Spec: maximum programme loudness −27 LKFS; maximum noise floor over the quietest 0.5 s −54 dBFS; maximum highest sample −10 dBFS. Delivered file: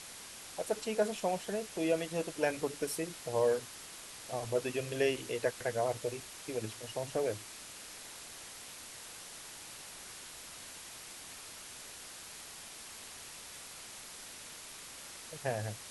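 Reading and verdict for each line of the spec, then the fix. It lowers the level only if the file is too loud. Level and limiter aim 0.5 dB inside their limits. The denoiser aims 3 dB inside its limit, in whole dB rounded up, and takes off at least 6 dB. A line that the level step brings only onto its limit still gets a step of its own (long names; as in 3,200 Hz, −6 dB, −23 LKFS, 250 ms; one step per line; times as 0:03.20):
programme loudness −38.0 LKFS: in spec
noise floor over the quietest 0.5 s −49 dBFS: out of spec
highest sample −18.0 dBFS: in spec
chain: broadband denoise 8 dB, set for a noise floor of −49 dBFS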